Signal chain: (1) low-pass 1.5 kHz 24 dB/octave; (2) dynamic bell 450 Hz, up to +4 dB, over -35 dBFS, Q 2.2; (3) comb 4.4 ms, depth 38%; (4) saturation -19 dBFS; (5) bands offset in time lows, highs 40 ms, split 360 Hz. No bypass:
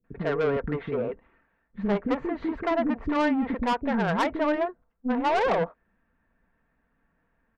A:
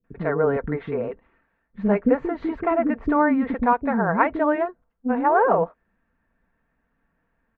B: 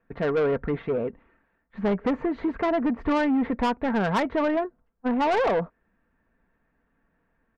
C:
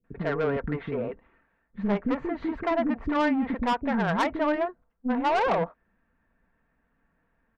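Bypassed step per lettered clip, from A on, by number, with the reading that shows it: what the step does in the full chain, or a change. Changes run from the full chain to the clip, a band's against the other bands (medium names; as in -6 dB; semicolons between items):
4, distortion -9 dB; 5, echo-to-direct 19.0 dB to none; 2, momentary loudness spread change +1 LU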